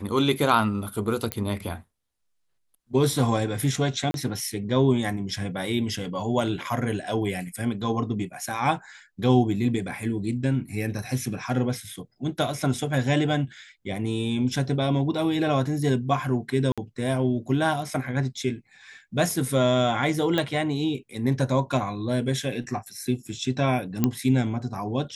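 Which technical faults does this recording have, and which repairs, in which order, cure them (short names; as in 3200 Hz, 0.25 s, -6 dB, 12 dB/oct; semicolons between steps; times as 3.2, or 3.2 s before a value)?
1.32 pop -9 dBFS
4.11–4.14 gap 32 ms
16.72–16.78 gap 56 ms
20.38 pop -12 dBFS
24.04 pop -8 dBFS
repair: de-click; interpolate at 4.11, 32 ms; interpolate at 16.72, 56 ms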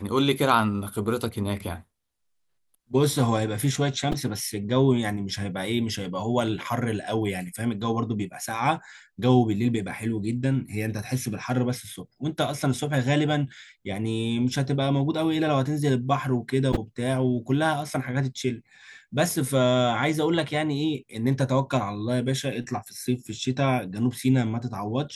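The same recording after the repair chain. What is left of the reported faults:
none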